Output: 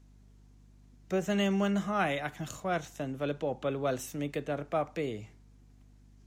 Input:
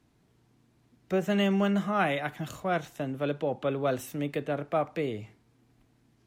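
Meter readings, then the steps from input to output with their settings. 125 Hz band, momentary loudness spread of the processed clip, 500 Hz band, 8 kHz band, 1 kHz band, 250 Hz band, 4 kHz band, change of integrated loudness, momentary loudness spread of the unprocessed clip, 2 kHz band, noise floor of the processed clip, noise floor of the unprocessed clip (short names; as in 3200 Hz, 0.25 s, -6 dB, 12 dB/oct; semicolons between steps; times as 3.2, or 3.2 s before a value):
-3.0 dB, 8 LU, -3.0 dB, +3.0 dB, -3.0 dB, -3.0 dB, -2.0 dB, -3.0 dB, 8 LU, -2.5 dB, -58 dBFS, -67 dBFS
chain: bell 6500 Hz +8 dB 0.74 oct; hum 50 Hz, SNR 24 dB; gain -3 dB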